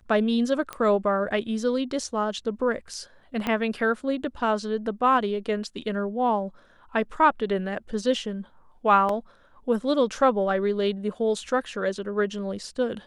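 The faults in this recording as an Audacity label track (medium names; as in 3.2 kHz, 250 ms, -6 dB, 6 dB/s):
0.730000	0.730000	pop -17 dBFS
3.470000	3.470000	pop -13 dBFS
9.090000	9.090000	dropout 2.8 ms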